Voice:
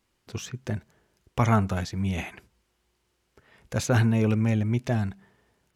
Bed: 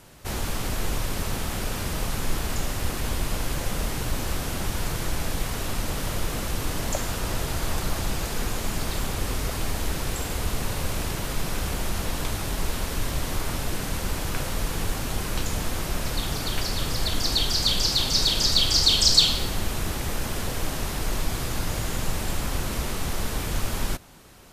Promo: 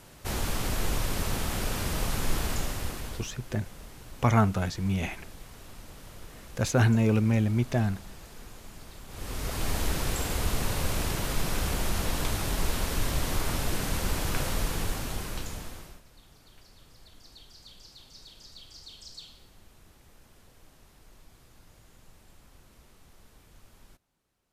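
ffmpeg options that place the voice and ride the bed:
ffmpeg -i stem1.wav -i stem2.wav -filter_complex "[0:a]adelay=2850,volume=-0.5dB[link_01];[1:a]volume=16dB,afade=type=out:start_time=2.44:duration=0.88:silence=0.141254,afade=type=in:start_time=9.07:duration=0.67:silence=0.133352,afade=type=out:start_time=14.49:duration=1.53:silence=0.0421697[link_02];[link_01][link_02]amix=inputs=2:normalize=0" out.wav

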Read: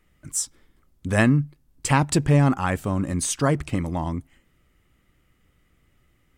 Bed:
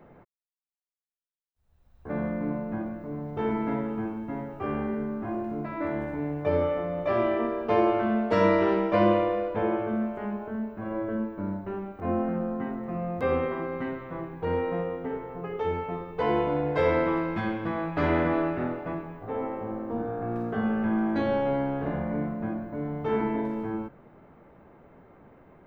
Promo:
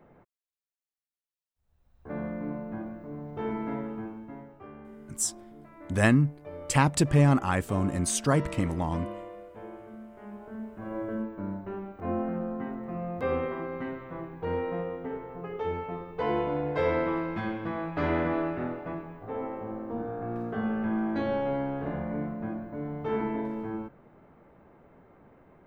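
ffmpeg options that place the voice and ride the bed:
ffmpeg -i stem1.wav -i stem2.wav -filter_complex "[0:a]adelay=4850,volume=-3dB[link_01];[1:a]volume=9.5dB,afade=type=out:start_time=3.85:duration=0.87:silence=0.237137,afade=type=in:start_time=10.07:duration=0.94:silence=0.199526[link_02];[link_01][link_02]amix=inputs=2:normalize=0" out.wav

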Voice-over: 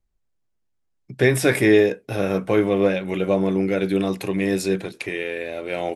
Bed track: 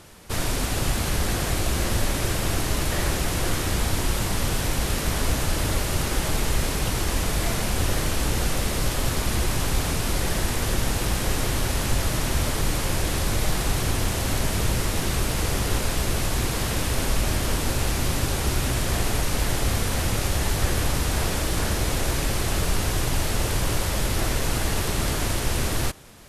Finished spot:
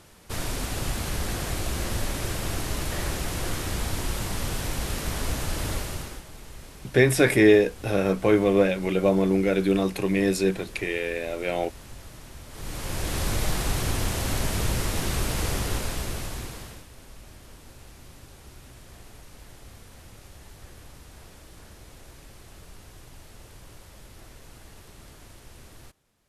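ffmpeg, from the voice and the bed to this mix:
ffmpeg -i stem1.wav -i stem2.wav -filter_complex "[0:a]adelay=5750,volume=-1dB[link_01];[1:a]volume=12.5dB,afade=type=out:start_time=5.73:duration=0.51:silence=0.177828,afade=type=in:start_time=12.49:duration=0.75:silence=0.133352,afade=type=out:start_time=15.47:duration=1.39:silence=0.0891251[link_02];[link_01][link_02]amix=inputs=2:normalize=0" out.wav

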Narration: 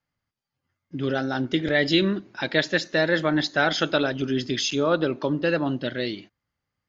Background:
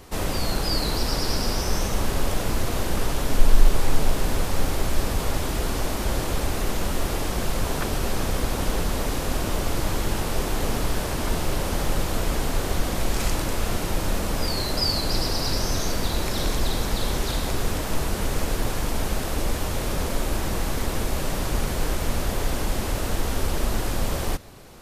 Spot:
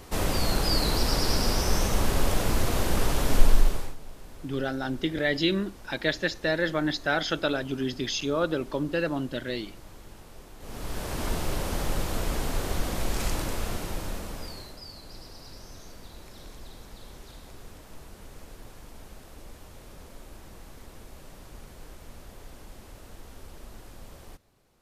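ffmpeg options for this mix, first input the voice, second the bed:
ffmpeg -i stem1.wav -i stem2.wav -filter_complex "[0:a]adelay=3500,volume=-4.5dB[link_01];[1:a]volume=17.5dB,afade=type=out:start_time=3.37:duration=0.58:silence=0.0794328,afade=type=in:start_time=10.59:duration=0.63:silence=0.125893,afade=type=out:start_time=13.4:duration=1.39:silence=0.149624[link_02];[link_01][link_02]amix=inputs=2:normalize=0" out.wav

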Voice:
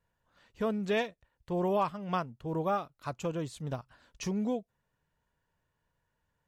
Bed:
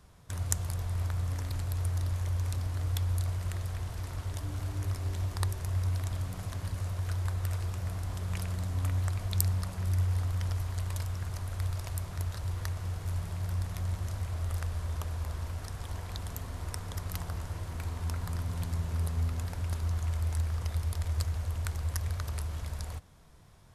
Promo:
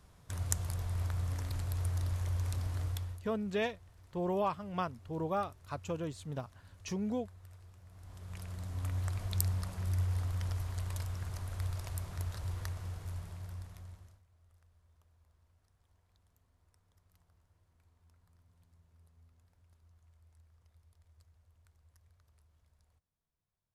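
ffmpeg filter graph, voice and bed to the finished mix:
ffmpeg -i stem1.wav -i stem2.wav -filter_complex "[0:a]adelay=2650,volume=-3.5dB[link_01];[1:a]volume=15dB,afade=type=out:start_time=2.8:duration=0.42:silence=0.112202,afade=type=in:start_time=7.89:duration=1.28:silence=0.125893,afade=type=out:start_time=12.51:duration=1.71:silence=0.0334965[link_02];[link_01][link_02]amix=inputs=2:normalize=0" out.wav

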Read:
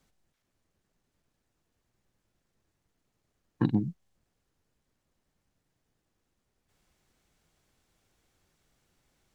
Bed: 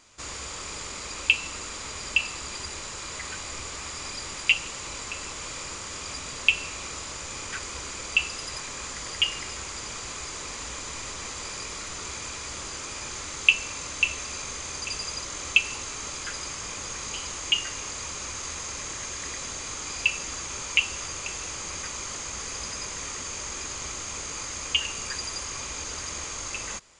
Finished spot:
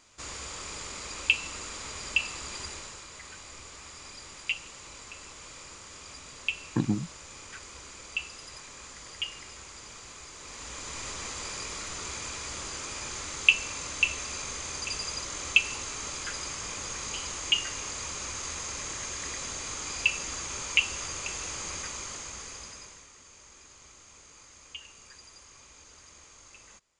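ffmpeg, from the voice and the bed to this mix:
ffmpeg -i stem1.wav -i stem2.wav -filter_complex "[0:a]adelay=3150,volume=-1dB[link_01];[1:a]volume=5.5dB,afade=type=out:start_time=2.65:duration=0.42:silence=0.446684,afade=type=in:start_time=10.37:duration=0.7:silence=0.375837,afade=type=out:start_time=21.68:duration=1.39:silence=0.141254[link_02];[link_01][link_02]amix=inputs=2:normalize=0" out.wav

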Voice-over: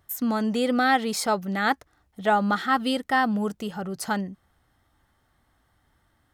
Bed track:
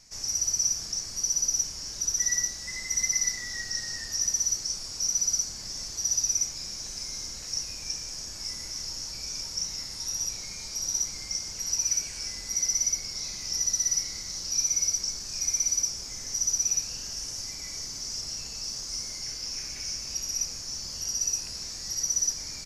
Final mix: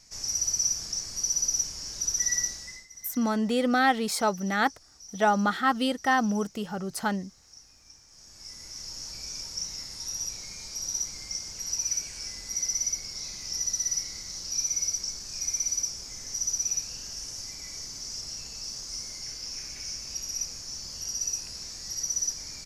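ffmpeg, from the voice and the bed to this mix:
ffmpeg -i stem1.wav -i stem2.wav -filter_complex "[0:a]adelay=2950,volume=-1.5dB[link_01];[1:a]volume=16.5dB,afade=type=out:start_time=2.51:duration=0.36:silence=0.112202,afade=type=in:start_time=8.08:duration=1:silence=0.141254[link_02];[link_01][link_02]amix=inputs=2:normalize=0" out.wav

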